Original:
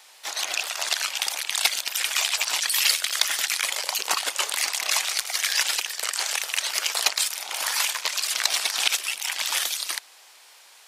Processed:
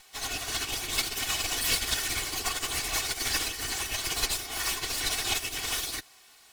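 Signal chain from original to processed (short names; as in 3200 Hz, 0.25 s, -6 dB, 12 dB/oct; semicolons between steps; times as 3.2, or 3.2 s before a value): minimum comb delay 2.7 ms; plain phase-vocoder stretch 0.6×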